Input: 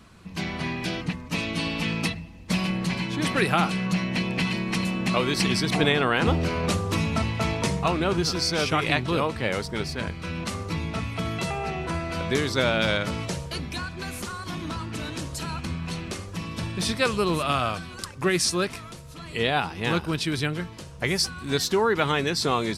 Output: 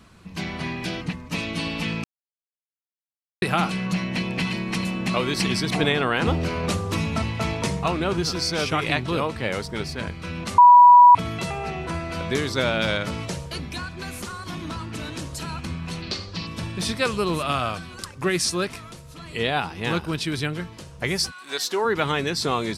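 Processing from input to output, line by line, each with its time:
2.04–3.42 s: mute
10.58–11.15 s: bleep 976 Hz -6.5 dBFS
16.02–16.47 s: resonant low-pass 4.5 kHz, resonance Q 5.6
21.30–21.84 s: high-pass 1 kHz -> 310 Hz

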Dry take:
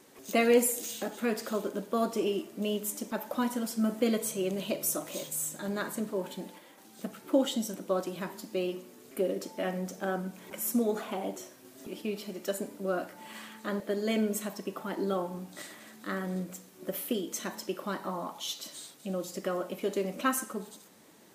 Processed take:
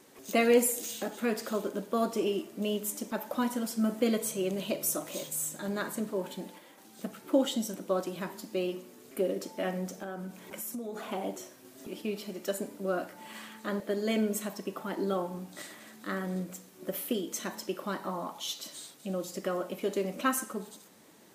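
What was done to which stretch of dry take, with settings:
9.93–11.09 s: compression, threshold -35 dBFS

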